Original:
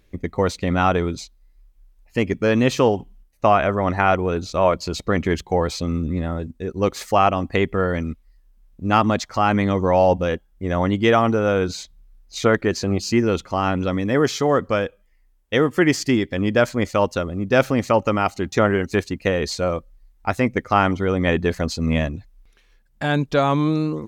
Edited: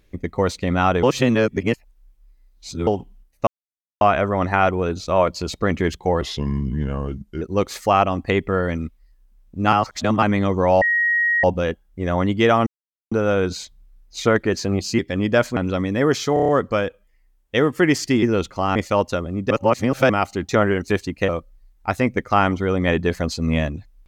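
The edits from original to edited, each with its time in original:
0:01.03–0:02.87: reverse
0:03.47: splice in silence 0.54 s
0:05.67–0:06.67: play speed 83%
0:08.98–0:09.48: reverse
0:10.07: insert tone 1,890 Hz −15.5 dBFS 0.62 s
0:11.30: splice in silence 0.45 s
0:13.17–0:13.70: swap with 0:16.21–0:16.79
0:14.47: stutter 0.03 s, 6 plays
0:17.54–0:18.13: reverse
0:19.32–0:19.68: remove

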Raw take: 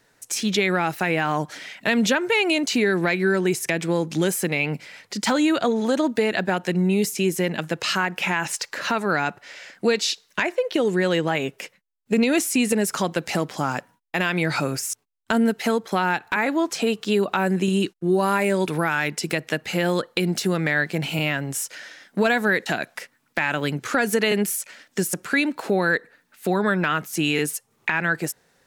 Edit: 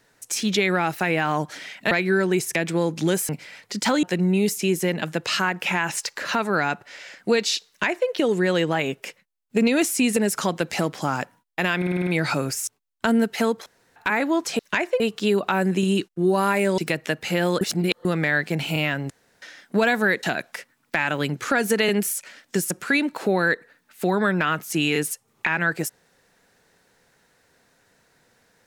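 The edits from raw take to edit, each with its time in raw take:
0:01.91–0:03.05: remove
0:04.43–0:04.70: remove
0:05.44–0:06.59: remove
0:10.24–0:10.65: duplicate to 0:16.85
0:14.33: stutter 0.05 s, 7 plays
0:15.92–0:16.22: fill with room tone
0:18.63–0:19.21: remove
0:20.04–0:20.48: reverse
0:21.53–0:21.85: fill with room tone

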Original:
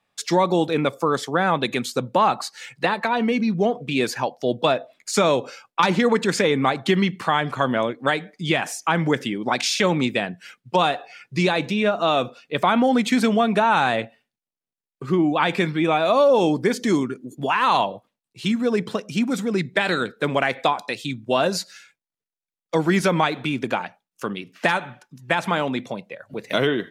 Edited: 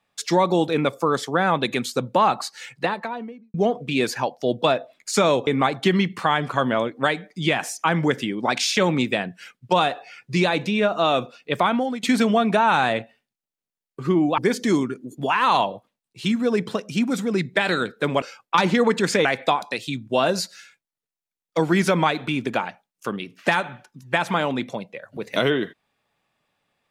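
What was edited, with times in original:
0:02.63–0:03.54: fade out and dull
0:05.47–0:06.50: move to 0:20.42
0:12.61–0:13.06: fade out, to −16.5 dB
0:15.41–0:16.58: remove

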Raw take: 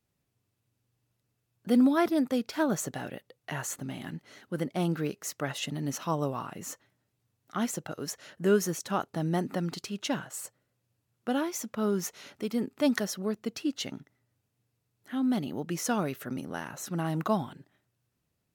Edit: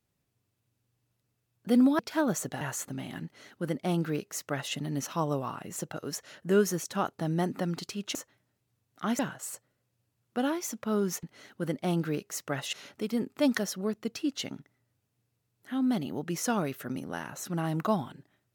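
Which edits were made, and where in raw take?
0:01.99–0:02.41: remove
0:03.03–0:03.52: remove
0:04.15–0:05.65: duplicate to 0:12.14
0:06.67–0:07.71: move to 0:10.10

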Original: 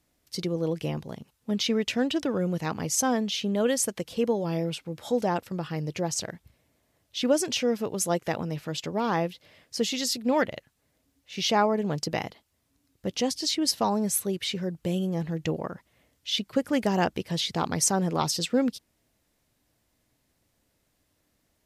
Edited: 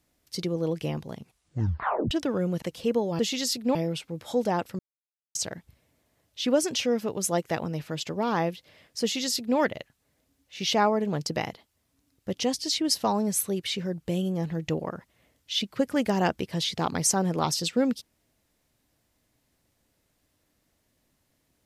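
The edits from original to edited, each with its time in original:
0:01.18: tape stop 0.93 s
0:02.62–0:03.95: remove
0:05.56–0:06.12: silence
0:09.79–0:10.35: duplicate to 0:04.52

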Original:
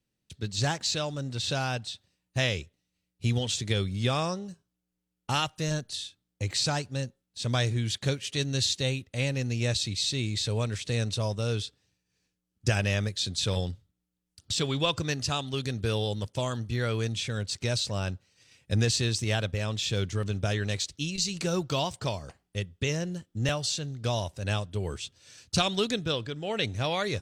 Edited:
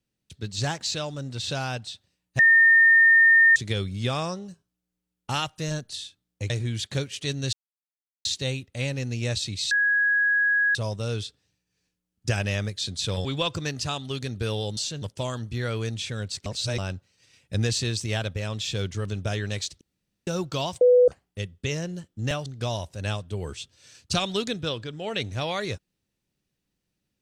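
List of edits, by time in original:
0:02.39–0:03.56: beep over 1,820 Hz −12.5 dBFS
0:06.50–0:07.61: remove
0:08.64: splice in silence 0.72 s
0:10.10–0:11.14: beep over 1,660 Hz −18.5 dBFS
0:13.64–0:14.68: remove
0:17.64–0:17.96: reverse
0:20.99–0:21.45: fill with room tone
0:21.99–0:22.26: beep over 495 Hz −12.5 dBFS
0:23.64–0:23.89: move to 0:16.20

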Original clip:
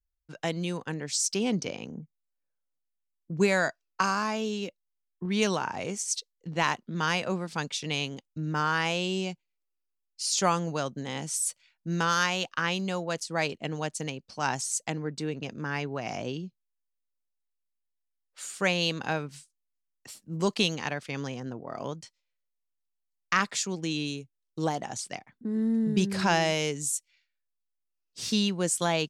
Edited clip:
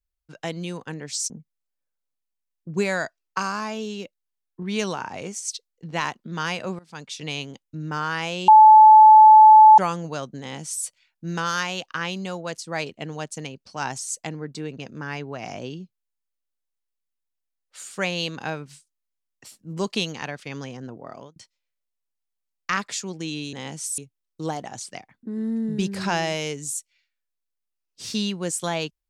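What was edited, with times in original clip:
0:01.30–0:01.93: remove
0:07.42–0:07.87: fade in, from −21 dB
0:09.11–0:10.41: beep over 866 Hz −6 dBFS
0:11.03–0:11.48: duplicate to 0:24.16
0:21.68–0:21.99: fade out

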